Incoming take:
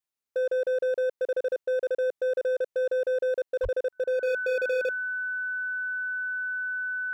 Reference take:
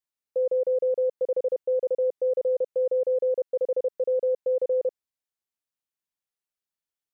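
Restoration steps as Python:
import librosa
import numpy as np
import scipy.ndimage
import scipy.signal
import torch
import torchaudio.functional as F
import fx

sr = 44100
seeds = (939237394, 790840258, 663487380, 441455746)

y = fx.fix_declip(x, sr, threshold_db=-23.5)
y = fx.notch(y, sr, hz=1500.0, q=30.0)
y = fx.fix_deplosive(y, sr, at_s=(3.62,))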